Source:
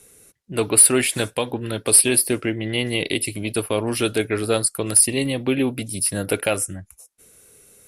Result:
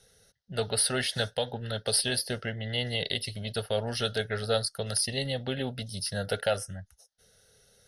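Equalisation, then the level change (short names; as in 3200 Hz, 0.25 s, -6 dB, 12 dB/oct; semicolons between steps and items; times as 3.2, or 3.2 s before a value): synth low-pass 6600 Hz, resonance Q 2.5; fixed phaser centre 1600 Hz, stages 8; -3.5 dB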